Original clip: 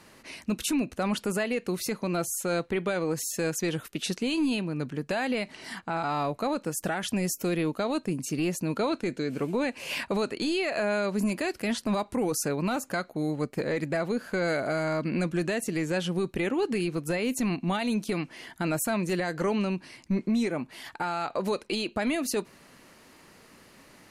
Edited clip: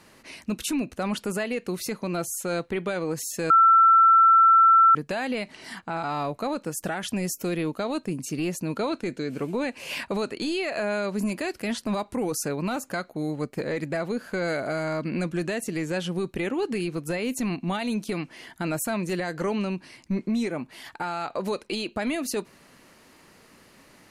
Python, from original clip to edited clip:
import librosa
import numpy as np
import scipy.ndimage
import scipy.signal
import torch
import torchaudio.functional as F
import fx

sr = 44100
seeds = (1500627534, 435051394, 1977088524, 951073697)

y = fx.edit(x, sr, fx.bleep(start_s=3.5, length_s=1.45, hz=1340.0, db=-12.5), tone=tone)